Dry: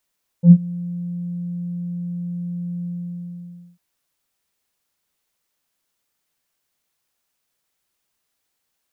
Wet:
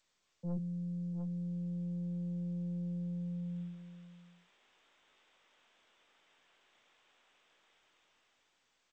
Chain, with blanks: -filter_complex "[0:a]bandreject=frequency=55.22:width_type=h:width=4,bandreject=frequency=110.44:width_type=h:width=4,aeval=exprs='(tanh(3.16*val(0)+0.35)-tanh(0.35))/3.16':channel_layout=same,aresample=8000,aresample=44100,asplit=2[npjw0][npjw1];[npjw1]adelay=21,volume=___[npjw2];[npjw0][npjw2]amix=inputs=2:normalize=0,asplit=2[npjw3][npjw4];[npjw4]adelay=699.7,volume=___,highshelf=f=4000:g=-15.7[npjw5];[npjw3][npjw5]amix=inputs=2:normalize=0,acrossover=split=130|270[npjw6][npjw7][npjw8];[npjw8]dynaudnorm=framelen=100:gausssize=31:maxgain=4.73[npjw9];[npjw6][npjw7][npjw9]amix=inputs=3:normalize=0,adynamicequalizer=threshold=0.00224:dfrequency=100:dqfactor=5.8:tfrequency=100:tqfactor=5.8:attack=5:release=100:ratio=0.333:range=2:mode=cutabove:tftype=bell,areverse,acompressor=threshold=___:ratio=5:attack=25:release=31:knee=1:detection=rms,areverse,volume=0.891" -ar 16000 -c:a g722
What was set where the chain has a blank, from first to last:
0.335, 0.112, 0.0112